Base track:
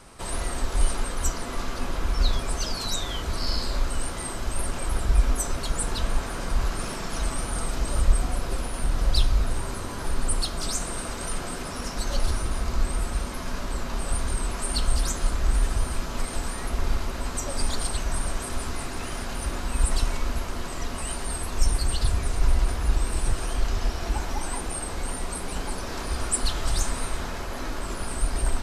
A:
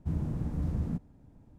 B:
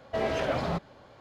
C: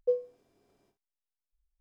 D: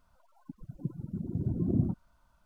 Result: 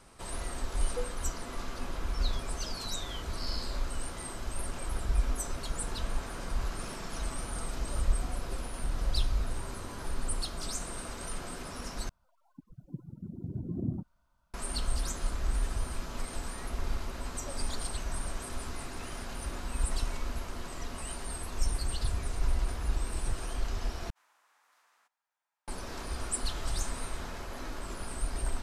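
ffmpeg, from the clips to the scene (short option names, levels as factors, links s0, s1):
-filter_complex "[0:a]volume=0.398[s0];[1:a]highpass=f=1100:w=0.5412,highpass=f=1100:w=1.3066[s1];[s0]asplit=3[s2][s3][s4];[s2]atrim=end=12.094[s5];[4:a]atrim=end=2.45,asetpts=PTS-STARTPTS,volume=0.501[s6];[s3]atrim=start=14.536:end=24.104[s7];[s1]atrim=end=1.58,asetpts=PTS-STARTPTS,volume=0.422[s8];[s4]atrim=start=25.676[s9];[3:a]atrim=end=1.8,asetpts=PTS-STARTPTS,volume=0.316,afade=t=in:d=0.004:c=hsin,afade=t=out:st=1.796:d=0.004:c=hsin,adelay=890[s10];[s5][s6]acrossfade=d=0.004:c1=hsin:c2=hsin[s11];[s11][s7]acrossfade=d=0.004:c1=hsin:c2=hsin[s12];[s12][s8]acrossfade=d=0.004:c1=hsin:c2=hsin[s13];[s13][s9]acrossfade=d=0.004:c1=hsin:c2=hsin[s14];[s14][s10]amix=inputs=2:normalize=0"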